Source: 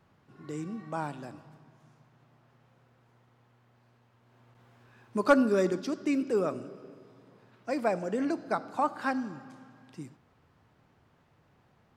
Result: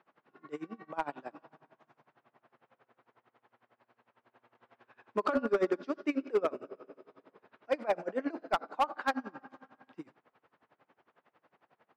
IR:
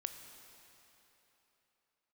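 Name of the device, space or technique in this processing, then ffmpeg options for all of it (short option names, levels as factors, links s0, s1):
helicopter radio: -af "highpass=390,lowpass=2700,aeval=exprs='val(0)*pow(10,-24*(0.5-0.5*cos(2*PI*11*n/s))/20)':c=same,asoftclip=type=hard:threshold=0.0422,volume=2.11"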